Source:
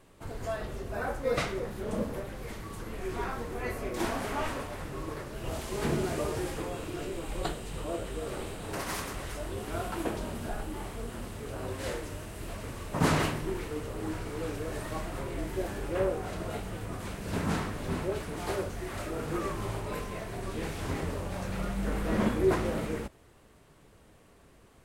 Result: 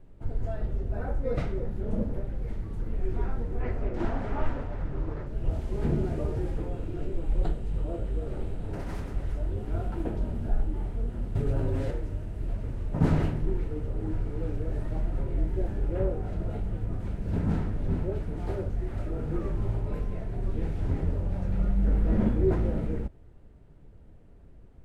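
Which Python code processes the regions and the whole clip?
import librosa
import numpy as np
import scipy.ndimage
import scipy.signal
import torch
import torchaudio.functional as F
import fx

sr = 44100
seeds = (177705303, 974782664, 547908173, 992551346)

y = fx.chain(x, sr, fx.lowpass(hz=7400.0, slope=12),
    fx.peak_eq(hz=1200.0, db=5.5, octaves=1.7),
    fx.doppler_dist(depth_ms=0.34), at=(3.6, 5.27))
y = fx.chain(y, sr, fx.comb(ms=7.3, depth=0.8),
    fx.env_flatten(amount_pct=100), at=(11.35, 11.91))
y = fx.tilt_eq(y, sr, slope=-4.0)
y = fx.notch(y, sr, hz=1100.0, q=7.6)
y = y * 10.0 ** (-6.5 / 20.0)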